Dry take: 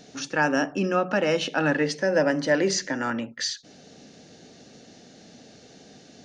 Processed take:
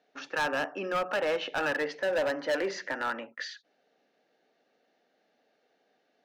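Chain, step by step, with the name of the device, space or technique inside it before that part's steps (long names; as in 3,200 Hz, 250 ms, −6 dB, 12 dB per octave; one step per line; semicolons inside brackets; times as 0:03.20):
walkie-talkie (band-pass filter 560–2,200 Hz; hard clipping −24.5 dBFS, distortion −9 dB; noise gate −51 dBFS, range −15 dB)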